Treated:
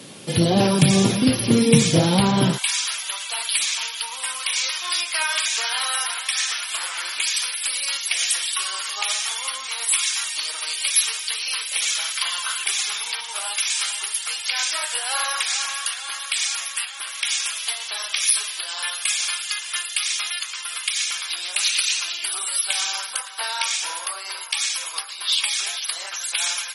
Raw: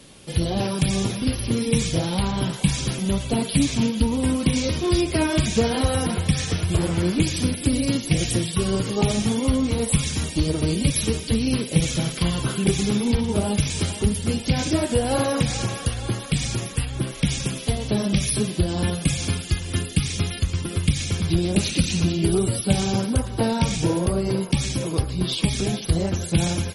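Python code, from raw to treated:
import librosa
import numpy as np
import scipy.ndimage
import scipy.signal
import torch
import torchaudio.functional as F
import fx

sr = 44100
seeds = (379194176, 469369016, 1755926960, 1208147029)

y = fx.highpass(x, sr, hz=fx.steps((0.0, 130.0), (2.58, 1100.0)), slope=24)
y = F.gain(torch.from_numpy(y), 7.0).numpy()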